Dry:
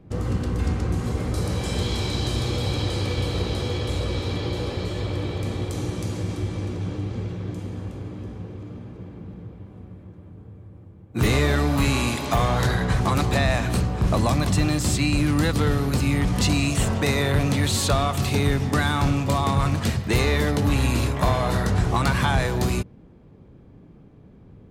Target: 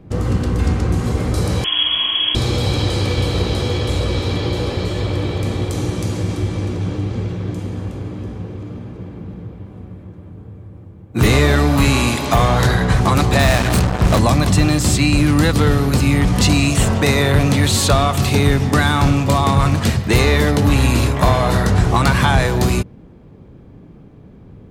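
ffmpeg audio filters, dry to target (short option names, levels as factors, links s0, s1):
-filter_complex "[0:a]asettb=1/sr,asplit=3[s0][s1][s2];[s0]atrim=end=1.644[s3];[s1]atrim=start=1.64:end=2.35,asetpts=PTS-STARTPTS,afade=t=in:d=0.004:c=qsin,afade=t=out:st=0.706:d=0.004:c=qsin,lowpass=f=2900:t=q:w=0.5098,lowpass=f=2900:t=q:w=0.6013,lowpass=f=2900:t=q:w=0.9,lowpass=f=2900:t=q:w=2.563,afreqshift=-3400[s4];[s2]atrim=start=2.346[s5];[s3][s4]acrossfade=d=0.004:c1=hsin:c2=qsin[s6];[s6][s5]acrossfade=d=0.004:c1=qsin:c2=hsin,asettb=1/sr,asplit=3[s7][s8][s9];[s7]atrim=end=13.394[s10];[s8]atrim=start=13.39:end=14.19,asetpts=PTS-STARTPTS,afade=t=in:d=0.004:c=qsin,afade=t=out:st=0.796:d=0.004:c=qsin,acrusher=bits=3:mix=0:aa=0.5[s11];[s9]atrim=start=14.186[s12];[s10][s11]acrossfade=d=0.004:c1=hsin:c2=qsin[s13];[s13][s12]acrossfade=d=0.004:c1=qsin:c2=hsin,volume=2.24"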